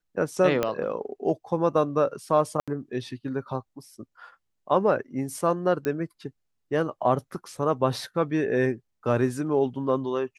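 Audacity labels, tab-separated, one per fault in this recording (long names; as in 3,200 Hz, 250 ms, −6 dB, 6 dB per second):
0.630000	0.630000	click −11 dBFS
2.600000	2.680000	drop-out 76 ms
5.850000	5.850000	click −17 dBFS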